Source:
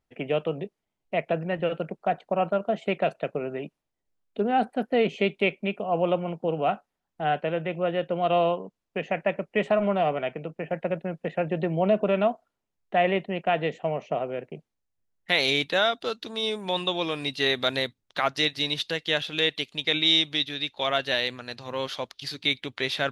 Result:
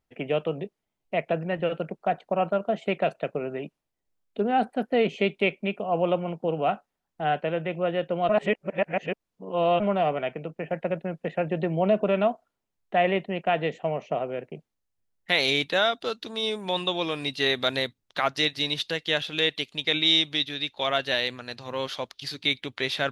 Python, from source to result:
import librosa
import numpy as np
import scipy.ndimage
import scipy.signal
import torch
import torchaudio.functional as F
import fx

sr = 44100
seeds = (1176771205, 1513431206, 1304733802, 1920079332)

y = fx.edit(x, sr, fx.reverse_span(start_s=8.29, length_s=1.51), tone=tone)